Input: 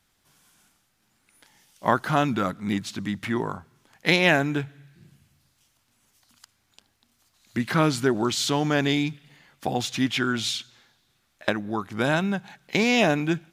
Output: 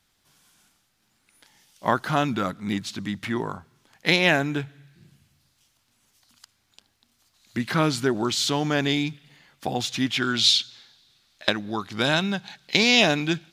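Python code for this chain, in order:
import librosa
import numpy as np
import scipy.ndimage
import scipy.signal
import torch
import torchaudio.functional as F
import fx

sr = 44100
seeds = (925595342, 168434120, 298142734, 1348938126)

y = fx.peak_eq(x, sr, hz=4200.0, db=fx.steps((0.0, 3.5), (10.22, 13.0)), octaves=1.2)
y = y * librosa.db_to_amplitude(-1.0)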